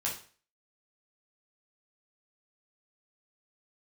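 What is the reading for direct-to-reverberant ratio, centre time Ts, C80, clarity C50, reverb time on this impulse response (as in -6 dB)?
-5.0 dB, 27 ms, 12.5 dB, 7.0 dB, 0.40 s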